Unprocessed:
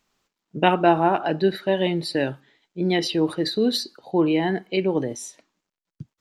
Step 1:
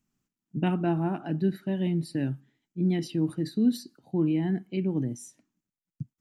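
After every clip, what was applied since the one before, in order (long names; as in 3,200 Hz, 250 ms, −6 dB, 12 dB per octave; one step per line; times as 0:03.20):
octave-band graphic EQ 125/250/500/1,000/2,000/4,000 Hz +8/+7/−12/−8/−5/−12 dB
level −5.5 dB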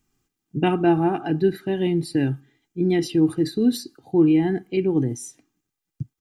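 comb filter 2.5 ms, depth 57%
level +7.5 dB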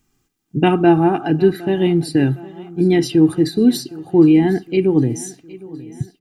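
repeating echo 762 ms, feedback 55%, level −20 dB
level +6 dB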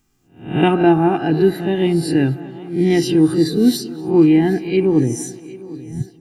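peak hold with a rise ahead of every peak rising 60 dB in 0.43 s
tape delay 236 ms, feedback 58%, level −18 dB, low-pass 2,600 Hz
level −1 dB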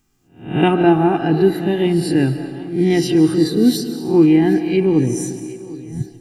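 convolution reverb RT60 1.5 s, pre-delay 105 ms, DRR 11 dB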